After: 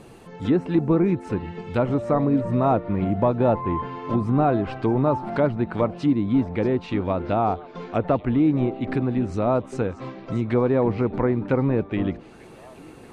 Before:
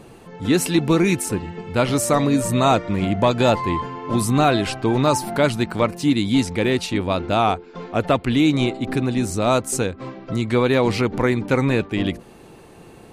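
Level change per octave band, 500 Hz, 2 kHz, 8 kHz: -2.5 dB, -10.5 dB, under -25 dB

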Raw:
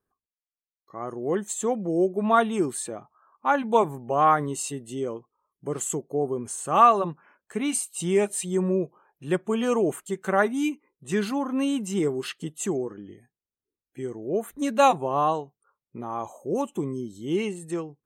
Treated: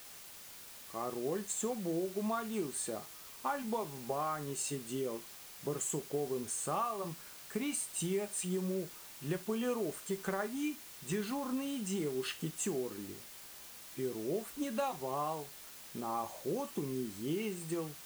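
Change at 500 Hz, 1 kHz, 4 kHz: -11.5, -15.5, -6.5 dB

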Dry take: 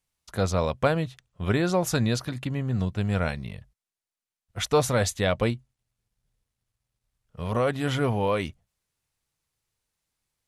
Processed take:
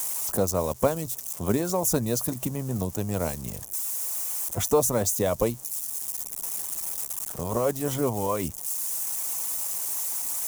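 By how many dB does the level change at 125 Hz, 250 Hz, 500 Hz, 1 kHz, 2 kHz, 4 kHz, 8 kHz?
-4.0, -1.0, +0.5, -1.5, -9.0, -4.0, +11.0 dB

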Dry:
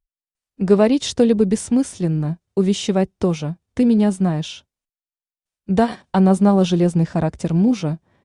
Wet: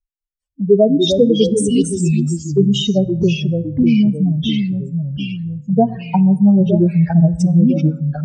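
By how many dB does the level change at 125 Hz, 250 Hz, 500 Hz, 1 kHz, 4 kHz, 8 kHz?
+6.0, +3.5, +3.0, -1.5, +7.0, +2.5 dB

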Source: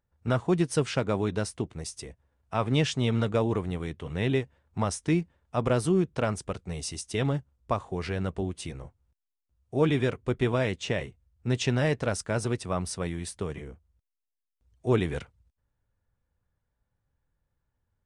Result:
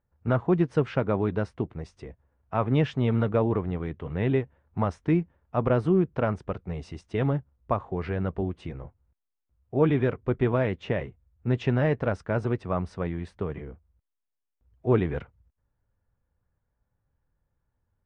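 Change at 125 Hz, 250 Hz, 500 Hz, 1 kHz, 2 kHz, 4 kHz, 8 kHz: +2.0 dB, +2.0 dB, +2.0 dB, +1.5 dB, -1.5 dB, -9.5 dB, under -20 dB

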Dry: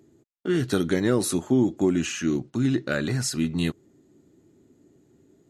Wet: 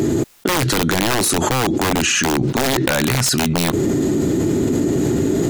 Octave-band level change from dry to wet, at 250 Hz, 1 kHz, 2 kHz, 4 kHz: +7.0, +17.5, +12.5, +14.5 dB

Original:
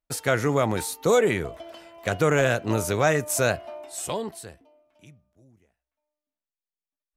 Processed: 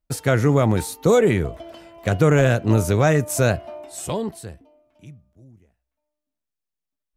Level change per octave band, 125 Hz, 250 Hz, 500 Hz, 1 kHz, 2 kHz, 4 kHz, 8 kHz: +10.0, +7.0, +3.5, +1.5, +0.5, 0.0, 0.0 dB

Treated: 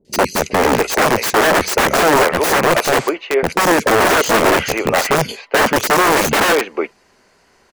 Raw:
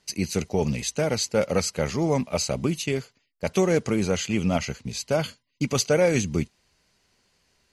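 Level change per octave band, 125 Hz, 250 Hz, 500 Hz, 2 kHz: +0.5, +6.0, +10.0, +18.5 dB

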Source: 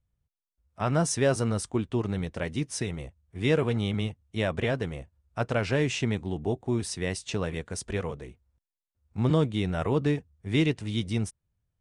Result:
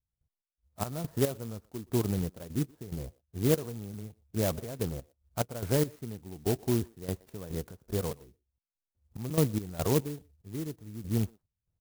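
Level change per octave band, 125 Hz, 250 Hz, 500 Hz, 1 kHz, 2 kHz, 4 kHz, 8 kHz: -4.0, -4.0, -4.0, -6.5, -12.5, -8.0, -4.5 dB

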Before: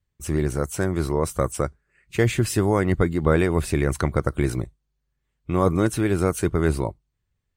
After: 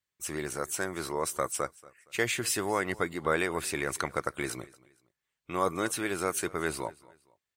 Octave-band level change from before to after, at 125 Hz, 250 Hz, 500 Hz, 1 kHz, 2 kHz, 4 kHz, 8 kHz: -20.0, -13.0, -9.0, -3.5, -1.5, -0.5, 0.0 dB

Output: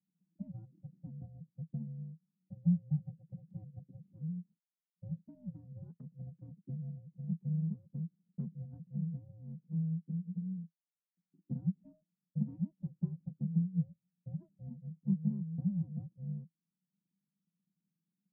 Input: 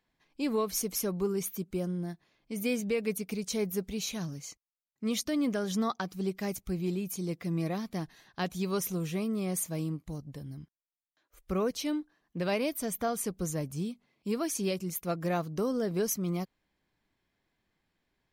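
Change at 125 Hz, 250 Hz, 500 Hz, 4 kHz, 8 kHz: +1.0 dB, -6.0 dB, -31.5 dB, under -40 dB, under -40 dB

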